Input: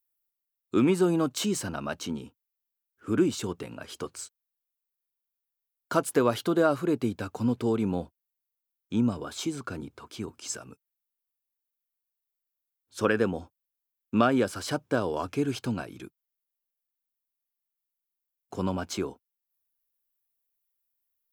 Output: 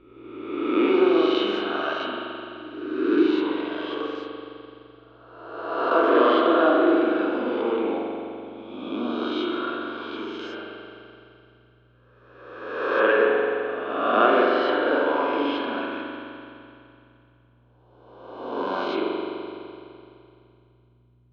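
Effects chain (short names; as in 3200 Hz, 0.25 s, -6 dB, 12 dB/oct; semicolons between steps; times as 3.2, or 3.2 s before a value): spectral swells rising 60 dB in 1.34 s; elliptic band-pass 300–3500 Hz, stop band 40 dB; hum 60 Hz, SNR 32 dB; spring tank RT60 2.7 s, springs 42 ms, chirp 30 ms, DRR -2.5 dB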